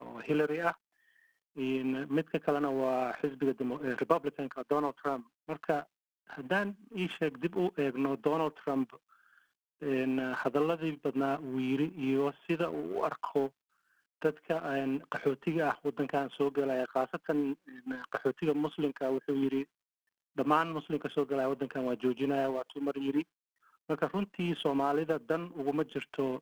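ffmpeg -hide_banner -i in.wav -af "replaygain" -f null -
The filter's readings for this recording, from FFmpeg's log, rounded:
track_gain = +13.3 dB
track_peak = 0.158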